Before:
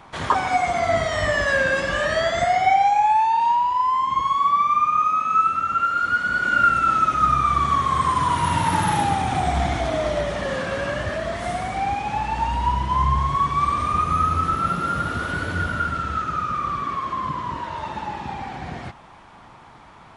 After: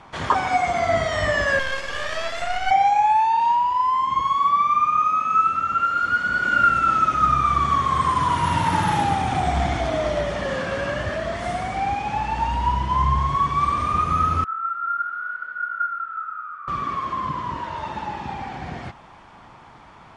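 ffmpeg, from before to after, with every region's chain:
ffmpeg -i in.wav -filter_complex "[0:a]asettb=1/sr,asplit=3[link_01][link_02][link_03];[link_01]atrim=end=1.594[link_04];[link_02]atrim=start=1.59:end=2.71,asetpts=PTS-STARTPTS,afade=type=in:duration=0.004:curve=qsin,afade=type=out:start_time=1.116:duration=0.004:curve=qsin,highpass=640,aeval=exprs='max(val(0),0)':channel_layout=same[link_05];[link_03]atrim=start=2.706[link_06];[link_04][link_05]acrossfade=duration=0.004:curve1=hsin:curve2=qsin[link_07];[link_07][link_06]acrossfade=duration=0.004:curve1=qsin:curve2=hsin,asettb=1/sr,asplit=3[link_08][link_09][link_10];[link_08]atrim=end=14.444[link_11];[link_09]atrim=start=14.44:end=16.68,asetpts=PTS-STARTPTS,afade=type=in:duration=0.004:curve=qsin,afade=type=out:start_time=2.236:duration=0.004:curve=qsin,bandpass=frequency=1400:width_type=q:width=13,asplit=2[link_12][link_13];[link_13]adelay=31,volume=-5dB[link_14];[link_12][link_14]amix=inputs=2:normalize=0,atrim=end_sample=98784[link_15];[link_10]atrim=start=16.676[link_16];[link_11][link_15]acrossfade=duration=0.004:curve1=hsin:curve2=qsin[link_17];[link_17][link_16]acrossfade=duration=0.004:curve1=qsin:curve2=hsin,lowpass=8200,bandreject=frequency=3900:width=23" out.wav

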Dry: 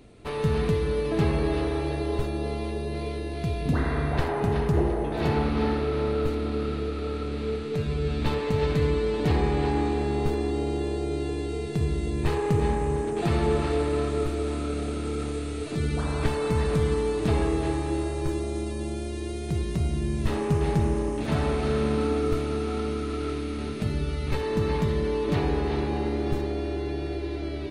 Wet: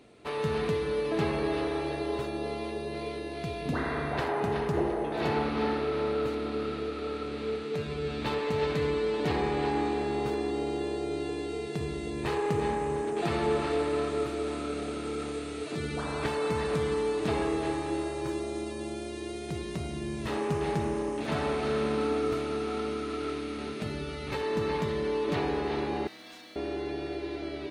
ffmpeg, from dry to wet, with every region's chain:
ffmpeg -i in.wav -filter_complex "[0:a]asettb=1/sr,asplit=3[link_01][link_02][link_03];[link_01]atrim=end=26.074[link_04];[link_02]atrim=start=26.07:end=26.56,asetpts=PTS-STARTPTS,afade=type=in:duration=0.004:curve=qsin,afade=type=out:start_time=0.486:duration=0.004:curve=qsin,bandpass=frequency=5300:width_type=q:width=0.76,acrusher=bits=3:mode=log:mix=0:aa=0.000001,afreqshift=-91[link_05];[link_03]atrim=start=26.556[link_06];[link_04][link_05]acrossfade=duration=0.004:curve1=hsin:curve2=qsin[link_07];[link_07][link_06]acrossfade=duration=0.004:curve1=qsin:curve2=hsin,highpass=frequency=350:poles=1,highshelf=frequency=8400:gain=-7" out.wav

